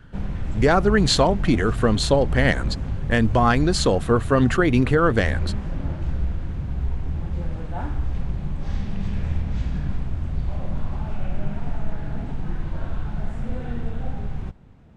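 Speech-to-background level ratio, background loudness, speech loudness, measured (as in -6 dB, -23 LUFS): 9.5 dB, -29.5 LUFS, -20.0 LUFS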